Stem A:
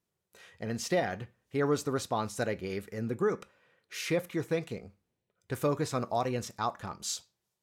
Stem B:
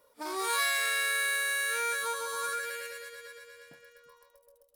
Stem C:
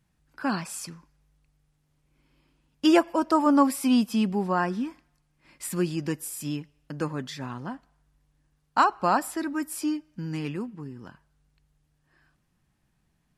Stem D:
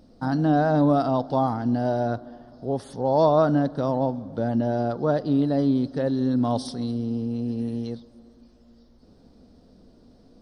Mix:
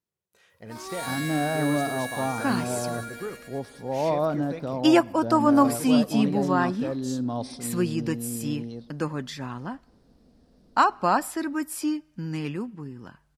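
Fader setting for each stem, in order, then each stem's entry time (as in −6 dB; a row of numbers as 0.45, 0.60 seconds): −6.5, −5.5, +1.0, −6.0 decibels; 0.00, 0.50, 2.00, 0.85 seconds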